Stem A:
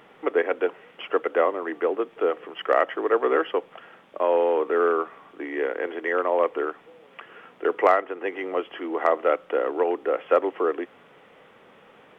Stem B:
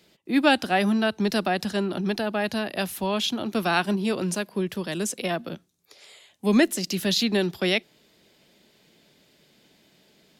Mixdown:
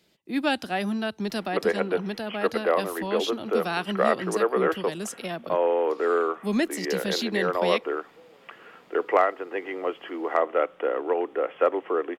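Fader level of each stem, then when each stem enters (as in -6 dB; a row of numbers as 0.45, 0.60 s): -2.0, -5.5 dB; 1.30, 0.00 s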